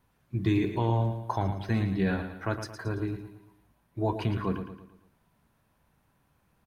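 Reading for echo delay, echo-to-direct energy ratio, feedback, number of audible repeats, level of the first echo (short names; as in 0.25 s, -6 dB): 0.112 s, -8.0 dB, 44%, 4, -9.0 dB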